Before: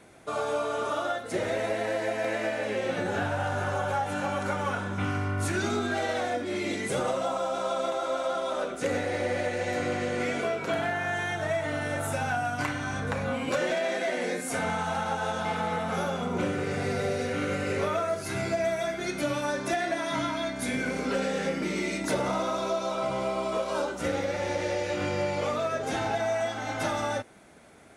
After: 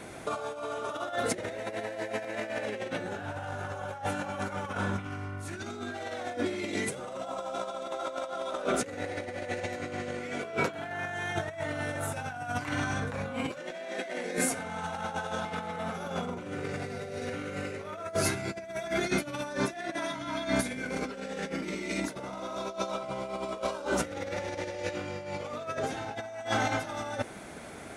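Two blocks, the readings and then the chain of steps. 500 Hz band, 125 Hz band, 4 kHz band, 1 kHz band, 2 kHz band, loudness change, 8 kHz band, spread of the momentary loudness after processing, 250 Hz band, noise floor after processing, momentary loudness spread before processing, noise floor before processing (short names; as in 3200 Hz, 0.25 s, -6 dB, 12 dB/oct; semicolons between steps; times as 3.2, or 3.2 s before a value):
-6.0 dB, -4.5 dB, -3.5 dB, -5.0 dB, -4.0 dB, -4.5 dB, 0.0 dB, 7 LU, -3.5 dB, -42 dBFS, 2 LU, -36 dBFS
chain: negative-ratio compressor -35 dBFS, ratio -0.5; gain +2.5 dB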